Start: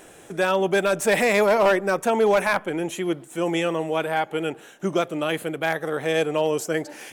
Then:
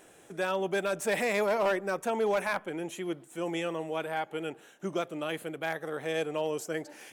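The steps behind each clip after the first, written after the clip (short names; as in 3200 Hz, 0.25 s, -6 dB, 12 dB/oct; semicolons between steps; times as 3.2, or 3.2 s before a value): low shelf 75 Hz -6 dB; gain -9 dB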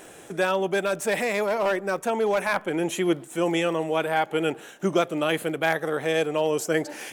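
vocal rider within 5 dB 0.5 s; crackle 14/s -44 dBFS; gain +7 dB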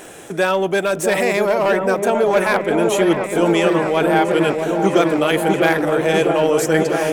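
in parallel at -8 dB: soft clip -27.5 dBFS, distortion -7 dB; on the sum: repeats that get brighter 0.649 s, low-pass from 750 Hz, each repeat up 1 oct, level -3 dB; gain +5 dB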